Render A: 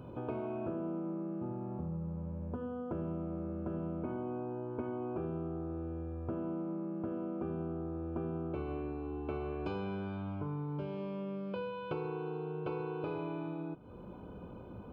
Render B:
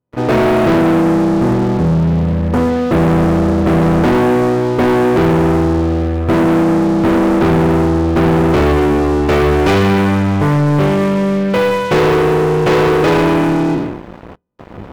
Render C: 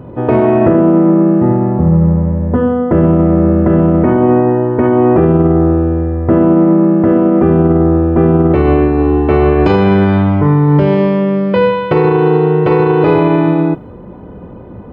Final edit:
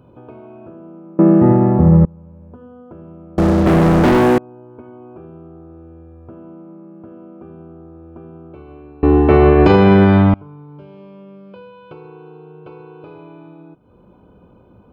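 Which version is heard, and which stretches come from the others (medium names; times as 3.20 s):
A
1.19–2.05 s: from C
3.38–4.38 s: from B
9.03–10.34 s: from C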